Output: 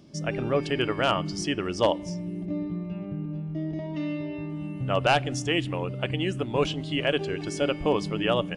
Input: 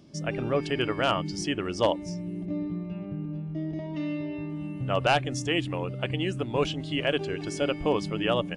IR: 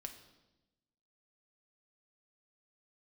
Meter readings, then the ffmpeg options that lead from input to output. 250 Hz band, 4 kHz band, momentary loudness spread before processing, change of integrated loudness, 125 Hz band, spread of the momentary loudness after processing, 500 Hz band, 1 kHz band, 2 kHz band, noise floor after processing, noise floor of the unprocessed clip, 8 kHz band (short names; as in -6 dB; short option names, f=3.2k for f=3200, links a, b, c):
+1.0 dB, +1.0 dB, 9 LU, +1.0 dB, +1.5 dB, 9 LU, +1.5 dB, +1.0 dB, +1.0 dB, -36 dBFS, -37 dBFS, +1.5 dB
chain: -filter_complex "[0:a]asplit=2[a][b];[1:a]atrim=start_sample=2205[c];[b][c]afir=irnorm=-1:irlink=0,volume=-11dB[d];[a][d]amix=inputs=2:normalize=0"